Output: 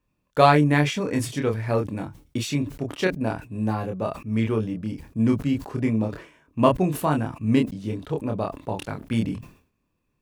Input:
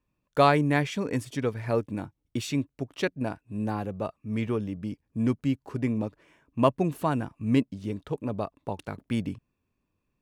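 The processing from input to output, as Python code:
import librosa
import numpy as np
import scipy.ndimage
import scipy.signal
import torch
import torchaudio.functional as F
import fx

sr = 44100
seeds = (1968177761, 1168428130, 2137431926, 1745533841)

y = fx.doubler(x, sr, ms=27.0, db=-4)
y = fx.sustainer(y, sr, db_per_s=120.0)
y = y * librosa.db_to_amplitude(2.5)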